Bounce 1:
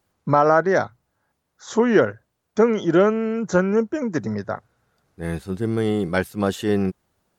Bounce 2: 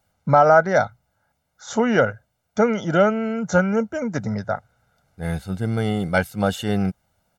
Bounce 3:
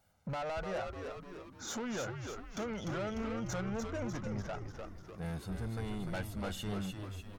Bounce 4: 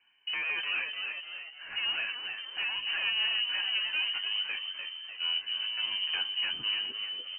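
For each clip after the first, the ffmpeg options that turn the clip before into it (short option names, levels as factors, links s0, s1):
-af "aecho=1:1:1.4:0.67"
-filter_complex "[0:a]acompressor=threshold=0.0251:ratio=2.5,asoftclip=type=tanh:threshold=0.0251,asplit=8[s0][s1][s2][s3][s4][s5][s6][s7];[s1]adelay=298,afreqshift=-100,volume=0.562[s8];[s2]adelay=596,afreqshift=-200,volume=0.309[s9];[s3]adelay=894,afreqshift=-300,volume=0.17[s10];[s4]adelay=1192,afreqshift=-400,volume=0.0933[s11];[s5]adelay=1490,afreqshift=-500,volume=0.0513[s12];[s6]adelay=1788,afreqshift=-600,volume=0.0282[s13];[s7]adelay=2086,afreqshift=-700,volume=0.0155[s14];[s0][s8][s9][s10][s11][s12][s13][s14]amix=inputs=8:normalize=0,volume=0.708"
-af "flanger=delay=8.4:depth=4.3:regen=45:speed=0.29:shape=triangular,bandreject=f=378.9:t=h:w=4,bandreject=f=757.8:t=h:w=4,bandreject=f=1136.7:t=h:w=4,bandreject=f=1515.6:t=h:w=4,bandreject=f=1894.5:t=h:w=4,bandreject=f=2273.4:t=h:w=4,bandreject=f=2652.3:t=h:w=4,bandreject=f=3031.2:t=h:w=4,bandreject=f=3410.1:t=h:w=4,bandreject=f=3789:t=h:w=4,bandreject=f=4167.9:t=h:w=4,bandreject=f=4546.8:t=h:w=4,bandreject=f=4925.7:t=h:w=4,bandreject=f=5304.6:t=h:w=4,bandreject=f=5683.5:t=h:w=4,bandreject=f=6062.4:t=h:w=4,bandreject=f=6441.3:t=h:w=4,bandreject=f=6820.2:t=h:w=4,bandreject=f=7199.1:t=h:w=4,bandreject=f=7578:t=h:w=4,bandreject=f=7956.9:t=h:w=4,bandreject=f=8335.8:t=h:w=4,bandreject=f=8714.7:t=h:w=4,bandreject=f=9093.6:t=h:w=4,bandreject=f=9472.5:t=h:w=4,bandreject=f=9851.4:t=h:w=4,bandreject=f=10230.3:t=h:w=4,bandreject=f=10609.2:t=h:w=4,bandreject=f=10988.1:t=h:w=4,bandreject=f=11367:t=h:w=4,lowpass=f=2600:t=q:w=0.5098,lowpass=f=2600:t=q:w=0.6013,lowpass=f=2600:t=q:w=0.9,lowpass=f=2600:t=q:w=2.563,afreqshift=-3100,volume=2.82"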